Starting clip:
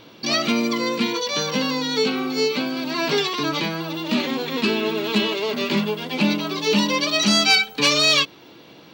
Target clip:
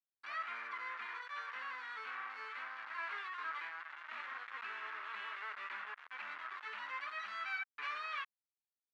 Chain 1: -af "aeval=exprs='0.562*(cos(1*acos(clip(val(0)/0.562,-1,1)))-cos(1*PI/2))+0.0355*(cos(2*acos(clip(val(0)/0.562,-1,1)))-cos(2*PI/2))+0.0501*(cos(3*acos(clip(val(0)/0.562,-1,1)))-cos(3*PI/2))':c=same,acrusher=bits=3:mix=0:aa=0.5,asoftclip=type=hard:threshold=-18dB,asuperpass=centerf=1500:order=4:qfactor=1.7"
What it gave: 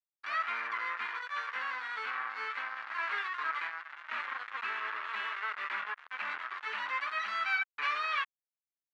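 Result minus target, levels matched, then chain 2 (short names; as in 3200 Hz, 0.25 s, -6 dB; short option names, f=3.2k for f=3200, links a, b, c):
hard clip: distortion -6 dB
-af "aeval=exprs='0.562*(cos(1*acos(clip(val(0)/0.562,-1,1)))-cos(1*PI/2))+0.0355*(cos(2*acos(clip(val(0)/0.562,-1,1)))-cos(2*PI/2))+0.0501*(cos(3*acos(clip(val(0)/0.562,-1,1)))-cos(3*PI/2))':c=same,acrusher=bits=3:mix=0:aa=0.5,asoftclip=type=hard:threshold=-28dB,asuperpass=centerf=1500:order=4:qfactor=1.7"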